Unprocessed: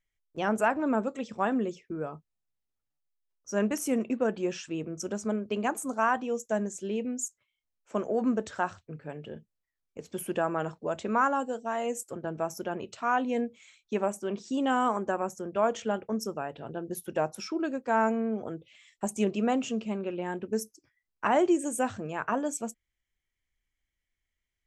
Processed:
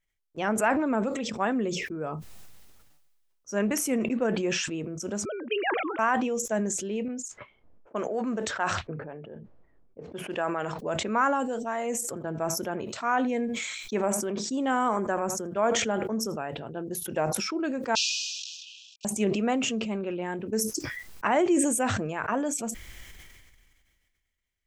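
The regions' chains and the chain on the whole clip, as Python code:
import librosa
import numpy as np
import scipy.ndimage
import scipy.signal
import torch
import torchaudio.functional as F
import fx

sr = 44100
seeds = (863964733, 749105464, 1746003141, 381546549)

y = fx.chain(x, sr, fx.sine_speech(),
    fx.cheby1_highpass(hz=210.0, order=10),
    fx.tilt_eq(slope=3.5), at=(5.25, 5.99))
y = fx.chain(y, sr, fx.env_lowpass(base_hz=390.0, full_db=-26.5),
    fx.low_shelf(hz=300.0, db=-9.0), at=(7.08, 10.79))
y = fx.chain(y, sr, fx.peak_eq(hz=2800.0, db=-5.5, octaves=0.3),
    fx.echo_single(ms=81, db=-21.0), at=(11.7, 16.38))
y = fx.chain(y, sr, fx.cvsd(bps=32000),
    fx.brickwall_highpass(low_hz=2400.0),
    fx.high_shelf(hz=3500.0, db=10.5), at=(17.95, 19.05))
y = fx.dynamic_eq(y, sr, hz=2100.0, q=2.5, threshold_db=-50.0, ratio=4.0, max_db=5)
y = fx.sustainer(y, sr, db_per_s=30.0)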